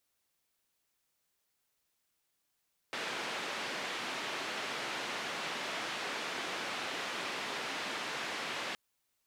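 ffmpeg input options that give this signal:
-f lavfi -i "anoisesrc=c=white:d=5.82:r=44100:seed=1,highpass=f=230,lowpass=f=2900,volume=-24.9dB"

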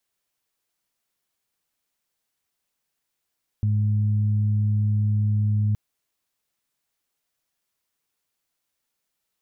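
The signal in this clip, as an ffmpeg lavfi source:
-f lavfi -i "aevalsrc='0.119*sin(2*PI*105*t)+0.0282*sin(2*PI*210*t)':d=2.12:s=44100"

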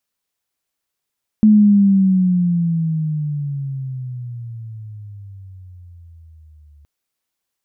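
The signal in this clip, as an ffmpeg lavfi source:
-f lavfi -i "aevalsrc='pow(10,(-6-38*t/5.42)/20)*sin(2*PI*216*5.42/(-19*log(2)/12)*(exp(-19*log(2)/12*t/5.42)-1))':d=5.42:s=44100"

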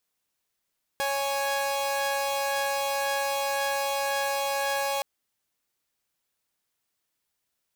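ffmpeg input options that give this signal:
-f lavfi -i "aevalsrc='0.0501*((2*mod(554.37*t,1)-1)+(2*mod(830.61*t,1)-1))':d=4.02:s=44100"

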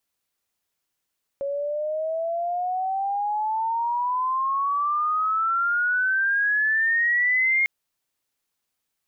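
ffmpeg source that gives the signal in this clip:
-f lavfi -i "aevalsrc='pow(10,(-17.5+7*(t/6.25-1))/20)*sin(2*PI*553*6.25/(23.5*log(2)/12)*(exp(23.5*log(2)/12*t/6.25)-1))':d=6.25:s=44100"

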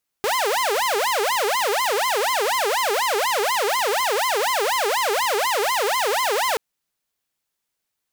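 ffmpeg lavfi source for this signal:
-f lavfi -i "aevalsrc='0.15*(2*mod((723.5*t-326.5/(2*PI*4.1)*sin(2*PI*4.1*t)),1)-1)':d=6.33:s=44100"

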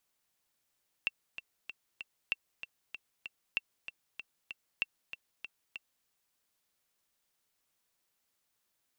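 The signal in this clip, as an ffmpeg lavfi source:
-f lavfi -i "aevalsrc='pow(10,(-17-11.5*gte(mod(t,4*60/192),60/192))/20)*sin(2*PI*2700*mod(t,60/192))*exp(-6.91*mod(t,60/192)/0.03)':d=5:s=44100"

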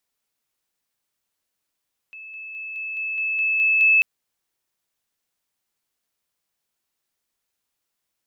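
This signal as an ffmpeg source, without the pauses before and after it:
-f lavfi -i "aevalsrc='pow(10,(-36.5+3*floor(t/0.21))/20)*sin(2*PI*2610*t)':d=1.89:s=44100"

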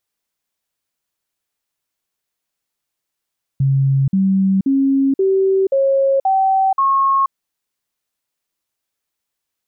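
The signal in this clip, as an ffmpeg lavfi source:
-f lavfi -i "aevalsrc='0.266*clip(min(mod(t,0.53),0.48-mod(t,0.53))/0.005,0,1)*sin(2*PI*136*pow(2,floor(t/0.53)/2)*mod(t,0.53))':d=3.71:s=44100"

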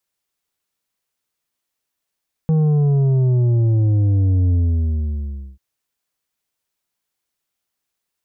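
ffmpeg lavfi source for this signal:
-f lavfi -i "aevalsrc='0.211*clip((3.09-t)/1.06,0,1)*tanh(2.24*sin(2*PI*160*3.09/log(65/160)*(exp(log(65/160)*t/3.09)-1)))/tanh(2.24)':d=3.09:s=44100"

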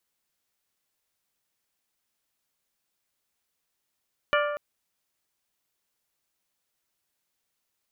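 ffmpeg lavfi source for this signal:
-f lavfi -i "aevalsrc='0.0794*pow(10,-3*t/1.49)*sin(2*PI*588*t)+0.0668*pow(10,-3*t/0.917)*sin(2*PI*1176*t)+0.0562*pow(10,-3*t/0.807)*sin(2*PI*1411.2*t)+0.0473*pow(10,-3*t/0.691)*sin(2*PI*1764*t)+0.0398*pow(10,-3*t/0.565)*sin(2*PI*2352*t)+0.0335*pow(10,-3*t/0.483)*sin(2*PI*2940*t)':d=0.24:s=44100"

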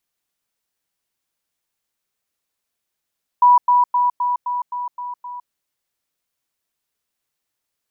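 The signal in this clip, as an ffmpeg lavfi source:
-f lavfi -i "aevalsrc='pow(10,(-7.5-3*floor(t/0.26))/20)*sin(2*PI*980*t)*clip(min(mod(t,0.26),0.16-mod(t,0.26))/0.005,0,1)':d=2.08:s=44100"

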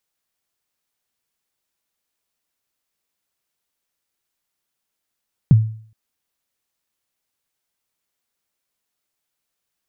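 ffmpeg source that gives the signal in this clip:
-f lavfi -i "aevalsrc='0.631*pow(10,-3*t/0.51)*sin(2*PI*(180*0.025/log(110/180)*(exp(log(110/180)*min(t,0.025)/0.025)-1)+110*max(t-0.025,0)))':d=0.42:s=44100"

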